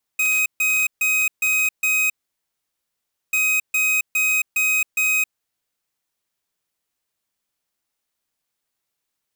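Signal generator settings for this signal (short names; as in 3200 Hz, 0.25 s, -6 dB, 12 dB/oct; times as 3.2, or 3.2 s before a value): beep pattern square 2520 Hz, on 0.27 s, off 0.14 s, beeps 5, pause 1.23 s, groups 2, -19 dBFS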